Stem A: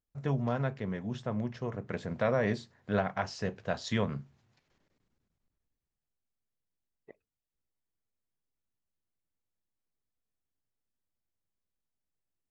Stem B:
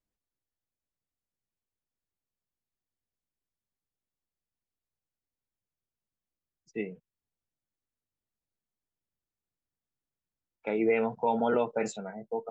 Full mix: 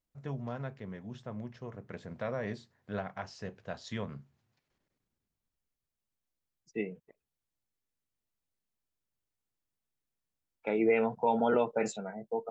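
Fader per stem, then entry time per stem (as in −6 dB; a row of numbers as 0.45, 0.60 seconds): −7.5, −0.5 decibels; 0.00, 0.00 seconds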